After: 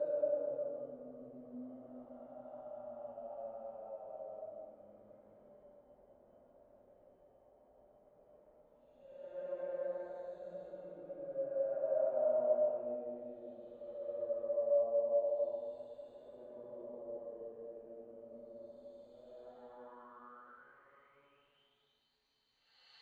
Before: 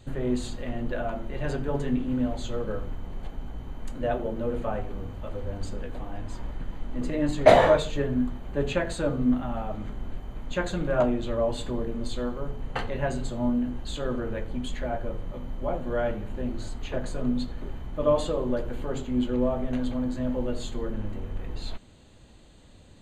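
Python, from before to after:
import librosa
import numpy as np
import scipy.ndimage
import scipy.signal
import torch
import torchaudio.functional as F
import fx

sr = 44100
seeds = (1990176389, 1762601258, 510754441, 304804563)

y = fx.paulstretch(x, sr, seeds[0], factor=6.2, window_s=0.25, from_s=9.02)
y = fx.filter_sweep_bandpass(y, sr, from_hz=580.0, to_hz=4400.0, start_s=19.24, end_s=22.16, q=7.1)
y = F.gain(torch.from_numpy(y), -6.0).numpy()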